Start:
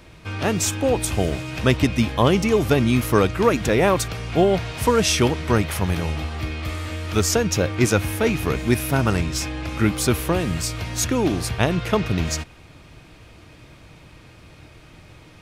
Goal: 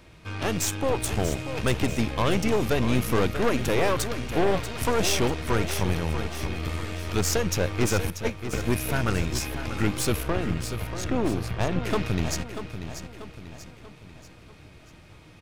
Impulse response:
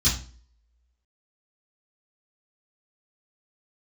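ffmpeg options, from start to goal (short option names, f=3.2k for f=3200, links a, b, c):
-filter_complex "[0:a]asettb=1/sr,asplit=3[a][b][c];[a]atrim=end=8.104[d];[b]atrim=start=8.1:end=8.53,asetpts=PTS-STARTPTS,afade=t=in:d=0.004:c=qsin,afade=t=out:st=0.426:d=0.004:c=qsin,agate=range=-20dB:threshold=-17dB:ratio=16:detection=peak[e];[c]atrim=start=8.526[f];[d][e]acrossfade=d=0.004:c1=hsin:c2=qsin[g];[g][f]acrossfade=d=0.004:c1=qsin:c2=hsin,asettb=1/sr,asplit=3[h][i][j];[h]atrim=end=10.234[k];[i]atrim=start=10.23:end=11.84,asetpts=PTS-STARTPTS,afade=t=in:d=0.004:c=qsin,afade=t=out:st=1.606:d=0.004:c=qsin,aemphasis=mode=reproduction:type=75kf[l];[j]atrim=start=11.836[m];[k][l]acrossfade=d=0.004:c1=hsin:c2=qsin[n];[n][m]acrossfade=d=0.004:c1=qsin:c2=hsin,aeval=exprs='(tanh(8.91*val(0)+0.8)-tanh(0.8))/8.91':c=same,aecho=1:1:638|1276|1914|2552|3190:0.316|0.149|0.0699|0.0328|0.0154"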